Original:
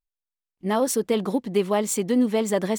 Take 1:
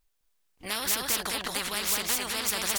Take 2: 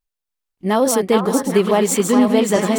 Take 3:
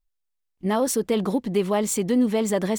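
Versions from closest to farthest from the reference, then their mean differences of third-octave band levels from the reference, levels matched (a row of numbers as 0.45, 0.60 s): 3, 2, 1; 1.0, 5.0, 15.0 dB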